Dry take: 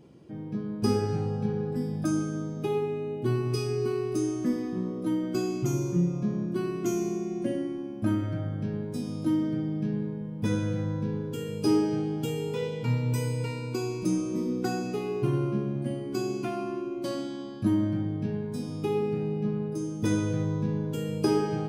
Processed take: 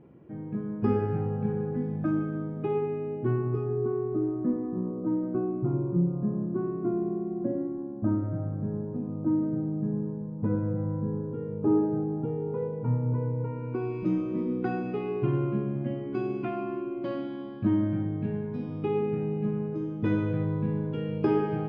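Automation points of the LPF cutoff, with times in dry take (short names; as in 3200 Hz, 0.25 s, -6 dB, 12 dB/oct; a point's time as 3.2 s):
LPF 24 dB/oct
3.14 s 2200 Hz
3.78 s 1200 Hz
13.45 s 1200 Hz
14.01 s 2700 Hz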